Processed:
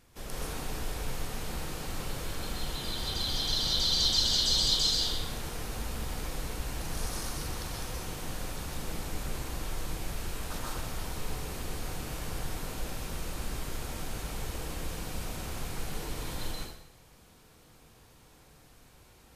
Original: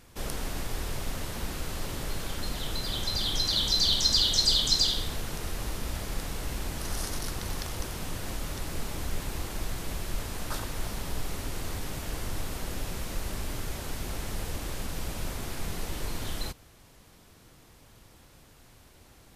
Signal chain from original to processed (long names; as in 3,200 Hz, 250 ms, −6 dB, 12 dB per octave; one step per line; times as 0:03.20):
dense smooth reverb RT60 0.7 s, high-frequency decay 0.95×, pre-delay 115 ms, DRR −4 dB
level −7 dB